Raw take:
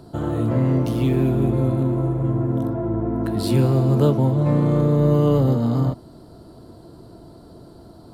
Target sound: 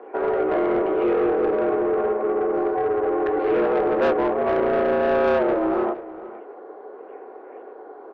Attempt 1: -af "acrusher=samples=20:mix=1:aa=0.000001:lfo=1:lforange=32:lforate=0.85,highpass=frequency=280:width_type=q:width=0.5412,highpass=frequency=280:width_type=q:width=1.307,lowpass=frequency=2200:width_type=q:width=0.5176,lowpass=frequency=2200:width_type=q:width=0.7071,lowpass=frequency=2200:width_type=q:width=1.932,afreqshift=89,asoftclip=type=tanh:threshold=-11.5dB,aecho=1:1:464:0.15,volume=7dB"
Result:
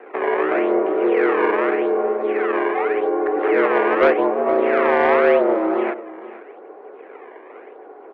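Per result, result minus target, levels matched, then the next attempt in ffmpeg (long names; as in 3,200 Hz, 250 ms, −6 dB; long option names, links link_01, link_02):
soft clipping: distortion −13 dB; sample-and-hold swept by an LFO: distortion +12 dB
-af "acrusher=samples=20:mix=1:aa=0.000001:lfo=1:lforange=32:lforate=0.85,highpass=frequency=280:width_type=q:width=0.5412,highpass=frequency=280:width_type=q:width=1.307,lowpass=frequency=2200:width_type=q:width=0.5176,lowpass=frequency=2200:width_type=q:width=0.7071,lowpass=frequency=2200:width_type=q:width=1.932,afreqshift=89,asoftclip=type=tanh:threshold=-22.5dB,aecho=1:1:464:0.15,volume=7dB"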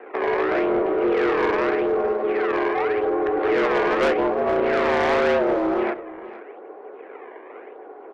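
sample-and-hold swept by an LFO: distortion +12 dB
-af "acrusher=samples=5:mix=1:aa=0.000001:lfo=1:lforange=8:lforate=0.85,highpass=frequency=280:width_type=q:width=0.5412,highpass=frequency=280:width_type=q:width=1.307,lowpass=frequency=2200:width_type=q:width=0.5176,lowpass=frequency=2200:width_type=q:width=0.7071,lowpass=frequency=2200:width_type=q:width=1.932,afreqshift=89,asoftclip=type=tanh:threshold=-22.5dB,aecho=1:1:464:0.15,volume=7dB"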